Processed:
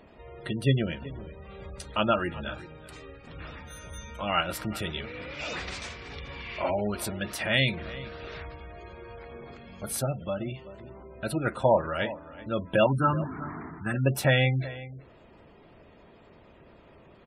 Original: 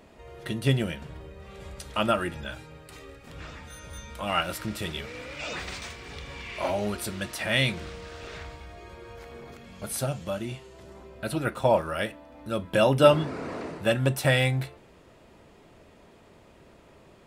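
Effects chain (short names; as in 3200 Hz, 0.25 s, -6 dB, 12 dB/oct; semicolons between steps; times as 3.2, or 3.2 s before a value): 12.86–13.94 fixed phaser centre 1300 Hz, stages 4; outdoor echo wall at 65 m, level -16 dB; spectral gate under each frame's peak -25 dB strong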